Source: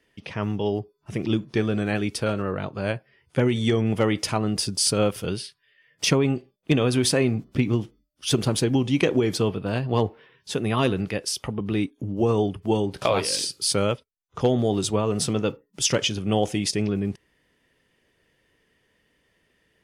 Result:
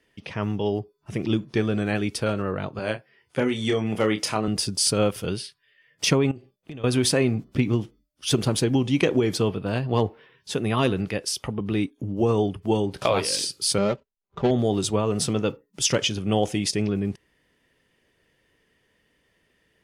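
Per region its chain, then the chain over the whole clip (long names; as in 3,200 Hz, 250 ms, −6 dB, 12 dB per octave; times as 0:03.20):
0:02.79–0:04.48: high-pass filter 260 Hz 6 dB per octave + double-tracking delay 28 ms −7 dB
0:06.31–0:06.84: parametric band 110 Hz +8 dB 0.37 octaves + downward compressor, threshold −36 dBFS
0:13.78–0:14.51: running median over 25 samples + low-pass filter 4,700 Hz + comb filter 5.1 ms, depth 57%
whole clip: no processing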